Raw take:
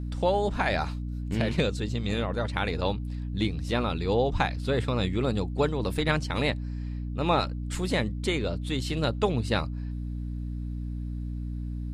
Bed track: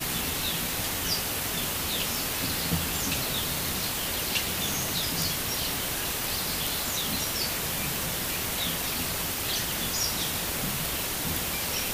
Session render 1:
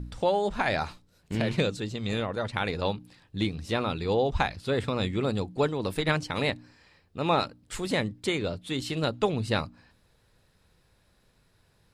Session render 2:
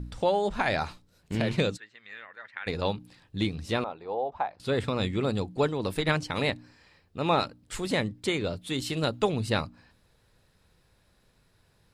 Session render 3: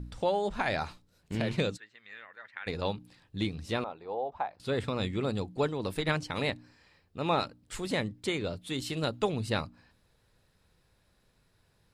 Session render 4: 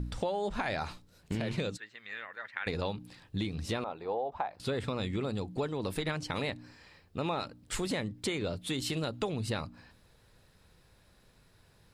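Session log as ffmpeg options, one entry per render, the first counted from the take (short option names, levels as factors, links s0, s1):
-af "bandreject=f=60:t=h:w=4,bandreject=f=120:t=h:w=4,bandreject=f=180:t=h:w=4,bandreject=f=240:t=h:w=4,bandreject=f=300:t=h:w=4"
-filter_complex "[0:a]asplit=3[s0][s1][s2];[s0]afade=t=out:st=1.76:d=0.02[s3];[s1]bandpass=f=1800:t=q:w=4.6,afade=t=in:st=1.76:d=0.02,afade=t=out:st=2.66:d=0.02[s4];[s2]afade=t=in:st=2.66:d=0.02[s5];[s3][s4][s5]amix=inputs=3:normalize=0,asettb=1/sr,asplit=3[s6][s7][s8];[s6]atrim=end=3.844[s9];[s7]atrim=start=3.84:end=4.6,asetpts=PTS-STARTPTS,afade=t=in:d=0.004:c=qsin,afade=t=out:st=0.756:d=0.004:c=qsin,bandpass=f=750:t=q:w=2.1[s10];[s8]atrim=start=4.596[s11];[s9][s10]acrossfade=d=0.004:c1=hsin:c2=qsin[s12];[s12][s11]acrossfade=d=0.004:c1=qsin:c2=hsin,asettb=1/sr,asplit=3[s13][s14][s15];[s13]atrim=end=8.504[s16];[s14]atrim=start=8.5:end=9.5,asetpts=PTS-STARTPTS,afade=t=in:d=0.004:c=qsin,afade=t=out:st=0.996:d=0.004:c=qsin,highshelf=f=9100:g=7.5[s17];[s15]atrim=start=9.496[s18];[s16][s17]acrossfade=d=0.004:c1=hsin:c2=qsin[s19];[s19][s18]acrossfade=d=0.004:c1=qsin:c2=hsin"
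-af "volume=0.668"
-filter_complex "[0:a]asplit=2[s0][s1];[s1]alimiter=level_in=1.19:limit=0.0631:level=0:latency=1,volume=0.841,volume=0.944[s2];[s0][s2]amix=inputs=2:normalize=0,acompressor=threshold=0.0316:ratio=5"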